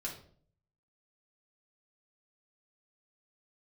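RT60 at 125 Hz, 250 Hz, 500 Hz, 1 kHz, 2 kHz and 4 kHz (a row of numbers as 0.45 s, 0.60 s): 0.90 s, 0.70 s, 0.60 s, 0.45 s, 0.40 s, 0.40 s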